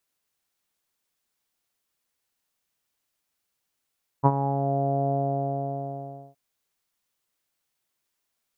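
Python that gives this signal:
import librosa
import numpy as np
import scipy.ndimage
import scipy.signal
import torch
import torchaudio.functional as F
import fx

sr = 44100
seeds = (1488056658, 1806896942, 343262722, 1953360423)

y = fx.sub_voice(sr, note=49, wave='saw', cutoff_hz=690.0, q=5.8, env_oct=0.5, env_s=0.49, attack_ms=29.0, decay_s=0.05, sustain_db=-10.5, release_s=1.24, note_s=0.88, slope=24)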